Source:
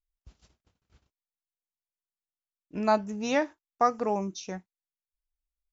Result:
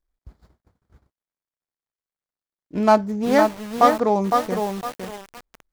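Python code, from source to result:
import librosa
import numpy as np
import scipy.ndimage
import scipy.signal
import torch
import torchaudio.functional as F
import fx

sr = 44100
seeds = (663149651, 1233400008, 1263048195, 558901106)

y = scipy.signal.medfilt(x, 15)
y = fx.peak_eq(y, sr, hz=2700.0, db=-7.0, octaves=0.21)
y = fx.echo_crushed(y, sr, ms=509, feedback_pct=35, bits=7, wet_db=-4)
y = y * librosa.db_to_amplitude(9.0)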